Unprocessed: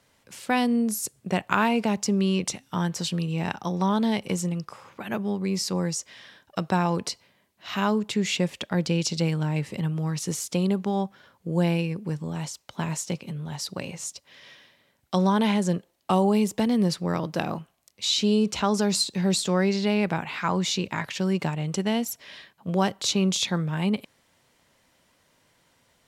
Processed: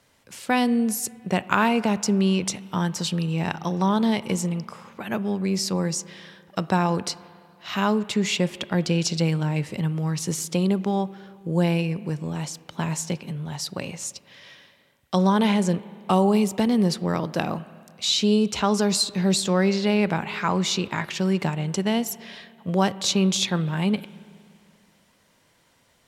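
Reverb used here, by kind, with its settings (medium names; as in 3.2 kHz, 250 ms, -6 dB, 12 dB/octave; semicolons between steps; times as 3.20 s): spring tank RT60 2.3 s, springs 31/48 ms, chirp 60 ms, DRR 17 dB; trim +2 dB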